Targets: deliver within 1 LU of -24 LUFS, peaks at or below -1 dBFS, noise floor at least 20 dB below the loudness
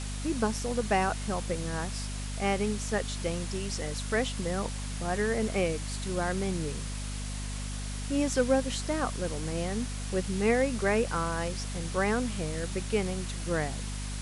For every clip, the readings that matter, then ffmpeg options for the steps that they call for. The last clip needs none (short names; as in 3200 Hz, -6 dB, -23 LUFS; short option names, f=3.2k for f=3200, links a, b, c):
hum 50 Hz; harmonics up to 250 Hz; hum level -33 dBFS; noise floor -36 dBFS; noise floor target -51 dBFS; loudness -31.0 LUFS; peak -12.0 dBFS; loudness target -24.0 LUFS
-> -af "bandreject=f=50:t=h:w=6,bandreject=f=100:t=h:w=6,bandreject=f=150:t=h:w=6,bandreject=f=200:t=h:w=6,bandreject=f=250:t=h:w=6"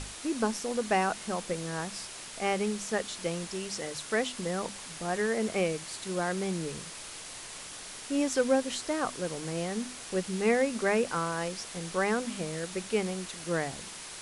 hum none; noise floor -44 dBFS; noise floor target -52 dBFS
-> -af "afftdn=nr=8:nf=-44"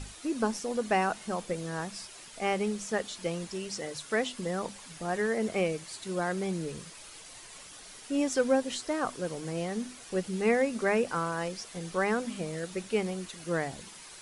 noise floor -49 dBFS; noise floor target -52 dBFS
-> -af "afftdn=nr=6:nf=-49"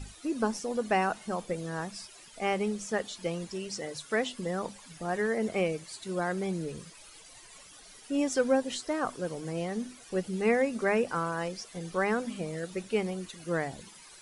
noise floor -52 dBFS; loudness -32.0 LUFS; peak -14.0 dBFS; loudness target -24.0 LUFS
-> -af "volume=8dB"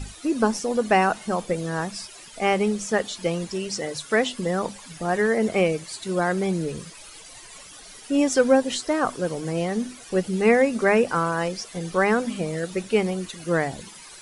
loudness -24.0 LUFS; peak -6.0 dBFS; noise floor -44 dBFS